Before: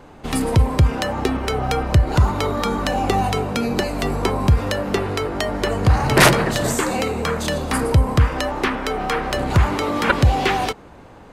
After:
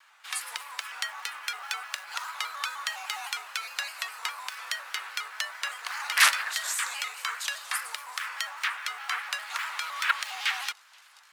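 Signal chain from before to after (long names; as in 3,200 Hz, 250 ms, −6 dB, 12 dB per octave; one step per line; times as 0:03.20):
delay with a high-pass on its return 481 ms, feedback 72%, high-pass 4,500 Hz, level −21 dB
in parallel at −10.5 dB: floating-point word with a short mantissa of 2 bits
on the sum: frequency shifter +28 Hz
high-pass filter 1,300 Hz 24 dB per octave
pitch modulation by a square or saw wave square 4.9 Hz, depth 100 cents
level −6.5 dB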